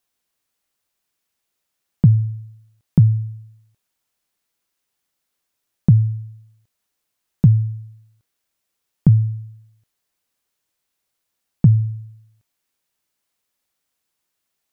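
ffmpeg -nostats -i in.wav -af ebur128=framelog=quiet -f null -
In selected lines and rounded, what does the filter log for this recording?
Integrated loudness:
  I:         -17.9 LUFS
  Threshold: -30.5 LUFS
Loudness range:
  LRA:         3.0 LU
  Threshold: -43.3 LUFS
  LRA low:   -24.9 LUFS
  LRA high:  -21.9 LUFS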